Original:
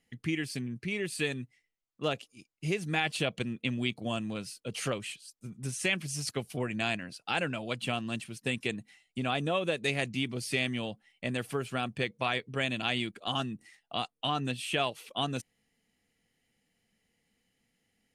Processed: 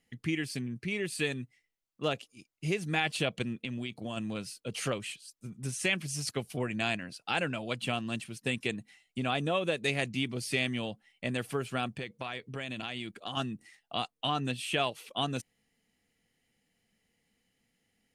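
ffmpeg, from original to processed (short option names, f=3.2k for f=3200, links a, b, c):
-filter_complex "[0:a]asplit=3[a][b][c];[a]afade=t=out:st=3.55:d=0.02[d];[b]acompressor=threshold=-33dB:ratio=4:attack=3.2:release=140:knee=1:detection=peak,afade=t=in:st=3.55:d=0.02,afade=t=out:st=4.16:d=0.02[e];[c]afade=t=in:st=4.16:d=0.02[f];[d][e][f]amix=inputs=3:normalize=0,asettb=1/sr,asplit=3[g][h][i];[g]atrim=end=11.984[j];[h]atrim=start=11.98:end=13.37,asetpts=PTS-STARTPTS,afade=t=in:d=0.004:c=qsin,afade=t=out:st=1.386:d=0.004:c=qsin,acompressor=threshold=-34dB:ratio=4:attack=3.2:release=140:knee=1:detection=peak[k];[i]atrim=start=13.366[l];[j][k]acrossfade=d=0.004:c1=hsin:c2=qsin[m];[m][l]acrossfade=d=0.004:c1=qsin:c2=hsin"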